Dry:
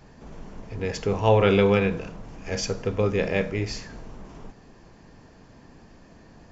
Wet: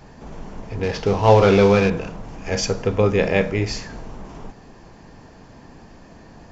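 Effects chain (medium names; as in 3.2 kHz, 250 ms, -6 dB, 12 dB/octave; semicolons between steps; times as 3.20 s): 0.83–1.90 s: CVSD coder 32 kbps; peaking EQ 830 Hz +3 dB 0.68 oct; trim +5.5 dB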